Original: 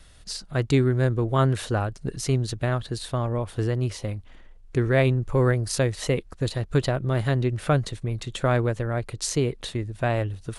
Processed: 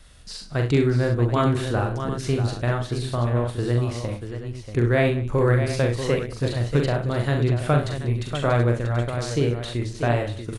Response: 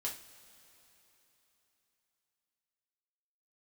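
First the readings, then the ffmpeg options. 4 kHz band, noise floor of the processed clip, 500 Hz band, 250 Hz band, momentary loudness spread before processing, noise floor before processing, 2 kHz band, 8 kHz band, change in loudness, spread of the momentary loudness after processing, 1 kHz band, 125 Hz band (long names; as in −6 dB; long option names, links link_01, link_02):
0.0 dB, −39 dBFS, +2.0 dB, +2.0 dB, 9 LU, −48 dBFS, +2.0 dB, −5.0 dB, +2.0 dB, 7 LU, +2.0 dB, +2.0 dB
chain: -filter_complex "[0:a]acrossover=split=4200[link_01][link_02];[link_02]acompressor=threshold=-40dB:ratio=4:attack=1:release=60[link_03];[link_01][link_03]amix=inputs=2:normalize=0,aecho=1:1:42|67|102|193|637|732:0.596|0.316|0.133|0.112|0.376|0.251"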